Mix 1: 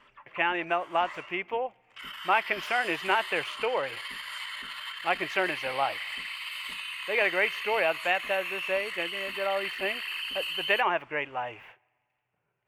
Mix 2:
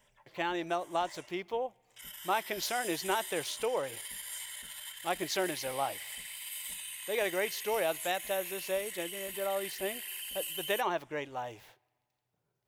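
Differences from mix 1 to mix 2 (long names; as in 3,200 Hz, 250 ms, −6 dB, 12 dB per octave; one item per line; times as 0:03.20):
background: add phaser with its sweep stopped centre 1,200 Hz, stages 6
master: add drawn EQ curve 310 Hz 0 dB, 2,700 Hz −12 dB, 4,000 Hz +14 dB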